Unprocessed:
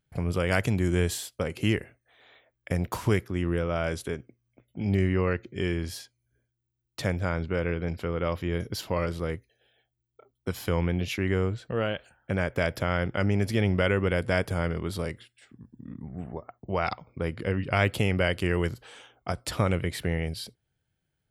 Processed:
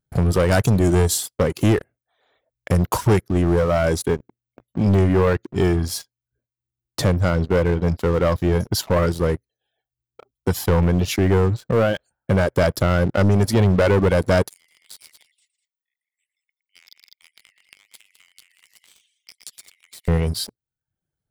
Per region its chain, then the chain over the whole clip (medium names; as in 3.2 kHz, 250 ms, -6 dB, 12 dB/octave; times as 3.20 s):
14.48–20.08 s: steep high-pass 2 kHz 96 dB/octave + multi-tap echo 114/165/201 ms -8.5/-18/-10 dB + compression 12:1, threshold -44 dBFS
whole clip: reverb removal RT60 0.62 s; peaking EQ 2.5 kHz -10.5 dB 1.1 oct; waveshaping leveller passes 3; trim +3 dB